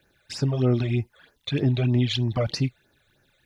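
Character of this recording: a quantiser's noise floor 12-bit, dither none; phasing stages 12, 3.2 Hz, lowest notch 270–3500 Hz

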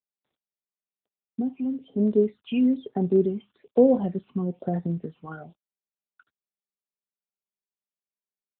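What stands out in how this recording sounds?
a quantiser's noise floor 10-bit, dither none; phasing stages 8, 1.1 Hz, lowest notch 520–2900 Hz; AMR-NB

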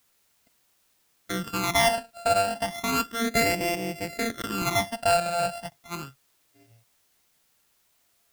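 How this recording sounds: a buzz of ramps at a fixed pitch in blocks of 64 samples; phasing stages 12, 0.33 Hz, lowest notch 340–1300 Hz; a quantiser's noise floor 12-bit, dither triangular

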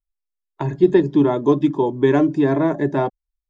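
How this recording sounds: noise floor -85 dBFS; spectral tilt -6.0 dB/octave

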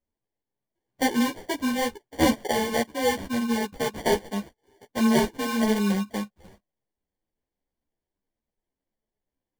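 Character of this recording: aliases and images of a low sample rate 1.3 kHz, jitter 0%; a shimmering, thickened sound

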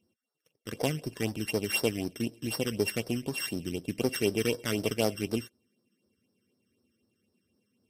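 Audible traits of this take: a buzz of ramps at a fixed pitch in blocks of 16 samples; phasing stages 12, 4 Hz, lowest notch 730–2700 Hz; Vorbis

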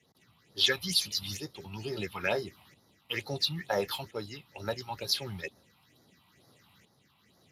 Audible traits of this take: tremolo saw up 0.73 Hz, depth 60%; phasing stages 6, 2.2 Hz, lowest notch 440–2600 Hz; Speex

